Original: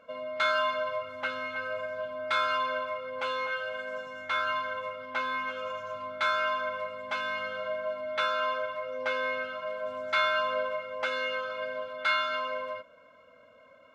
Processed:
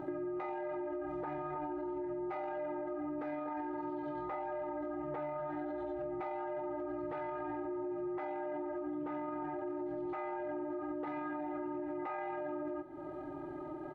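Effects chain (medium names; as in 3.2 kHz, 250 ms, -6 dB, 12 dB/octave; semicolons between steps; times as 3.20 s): treble shelf 2.6 kHz -8.5 dB; pitch shift -9.5 st; peak limiter -35 dBFS, peak gain reduction 16.5 dB; compression 4:1, threshold -57 dBFS, peak gain reduction 15 dB; trim +17 dB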